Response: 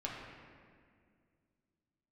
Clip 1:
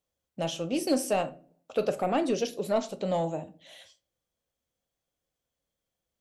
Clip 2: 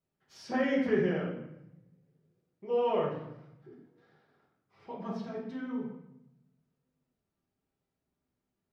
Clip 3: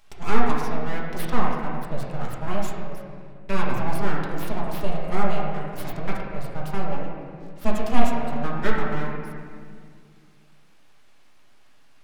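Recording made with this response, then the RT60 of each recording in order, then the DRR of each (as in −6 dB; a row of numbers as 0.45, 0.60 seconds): 3; non-exponential decay, 0.85 s, 2.1 s; 10.5, −5.5, −4.0 decibels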